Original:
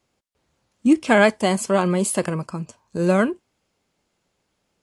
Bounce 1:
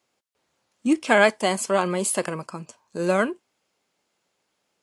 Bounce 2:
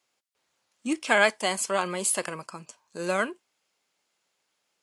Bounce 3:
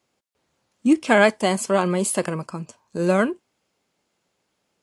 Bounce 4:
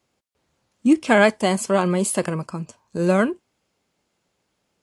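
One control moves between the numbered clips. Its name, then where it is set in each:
HPF, cutoff: 430, 1300, 170, 61 Hz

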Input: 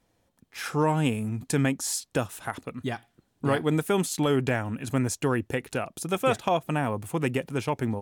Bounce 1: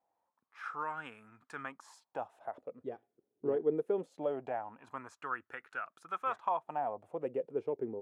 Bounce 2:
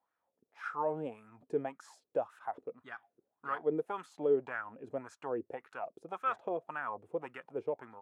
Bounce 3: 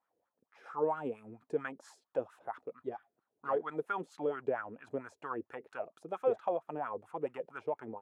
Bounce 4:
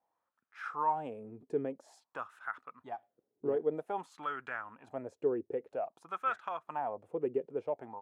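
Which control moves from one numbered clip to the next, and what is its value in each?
wah, rate: 0.22, 1.8, 4.4, 0.51 Hz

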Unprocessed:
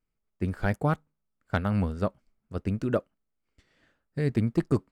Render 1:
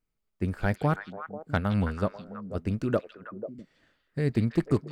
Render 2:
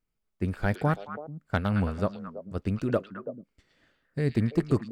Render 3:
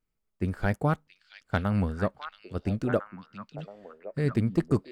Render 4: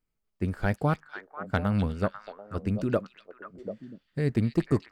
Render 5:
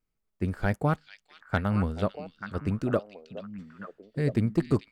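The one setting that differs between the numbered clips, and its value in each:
delay with a stepping band-pass, time: 0.163, 0.11, 0.676, 0.246, 0.443 s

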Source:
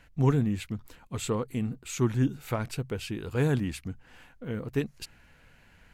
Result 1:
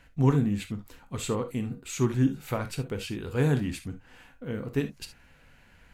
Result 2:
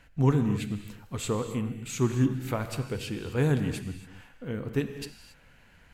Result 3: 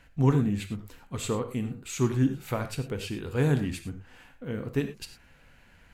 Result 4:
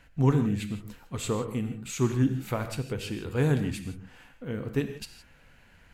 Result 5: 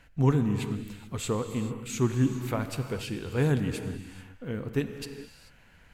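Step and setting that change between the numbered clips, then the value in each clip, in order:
non-linear reverb, gate: 90, 300, 130, 190, 460 ms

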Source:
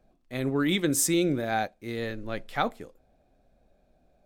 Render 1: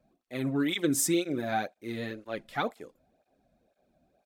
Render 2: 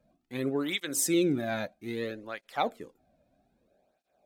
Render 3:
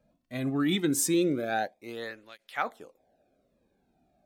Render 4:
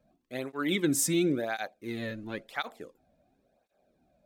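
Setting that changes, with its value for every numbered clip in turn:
tape flanging out of phase, nulls at: 2, 0.62, 0.21, 0.95 Hz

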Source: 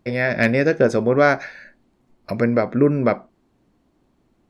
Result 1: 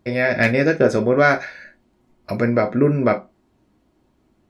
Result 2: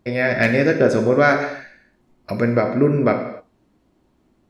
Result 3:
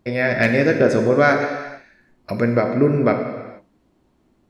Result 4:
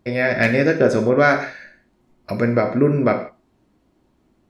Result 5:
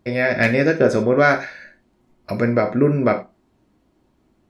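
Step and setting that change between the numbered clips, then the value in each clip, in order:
non-linear reverb, gate: 80, 300, 490, 190, 120 ms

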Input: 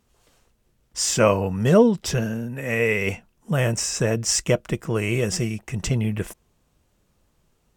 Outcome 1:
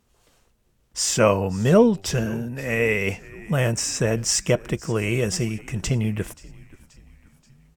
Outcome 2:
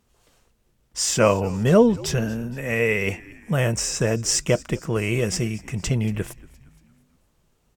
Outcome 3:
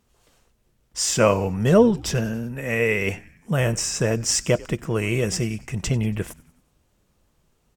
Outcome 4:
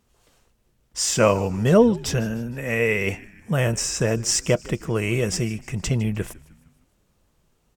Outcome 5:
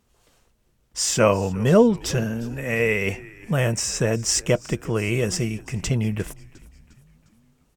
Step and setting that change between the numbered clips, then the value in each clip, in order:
frequency-shifting echo, time: 530, 233, 94, 154, 354 ms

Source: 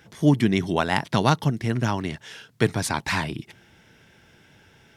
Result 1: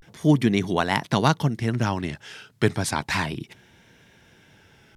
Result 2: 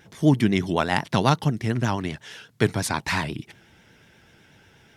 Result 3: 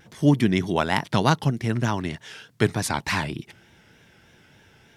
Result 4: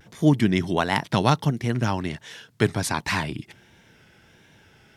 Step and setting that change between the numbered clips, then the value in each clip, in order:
vibrato, rate: 0.32, 8.2, 3.3, 1.4 Hz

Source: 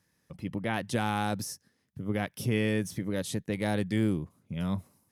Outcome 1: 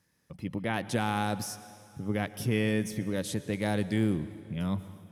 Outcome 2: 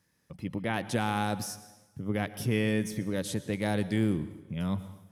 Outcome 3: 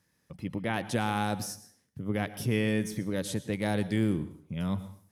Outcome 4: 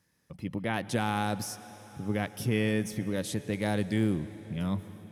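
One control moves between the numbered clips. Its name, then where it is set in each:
plate-style reverb, RT60: 2.4, 1.1, 0.52, 5.1 s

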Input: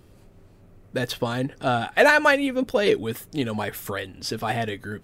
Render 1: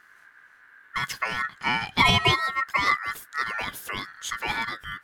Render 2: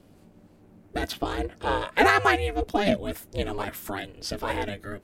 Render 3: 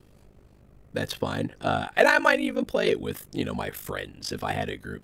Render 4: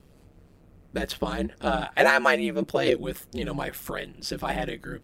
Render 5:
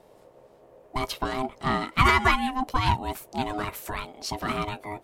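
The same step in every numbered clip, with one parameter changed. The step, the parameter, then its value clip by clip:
ring modulator, frequency: 1600, 200, 25, 69, 520 Hz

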